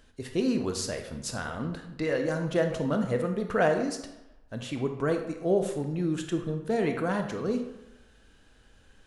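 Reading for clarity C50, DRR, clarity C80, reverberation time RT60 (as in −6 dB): 7.5 dB, 5.0 dB, 10.0 dB, 0.95 s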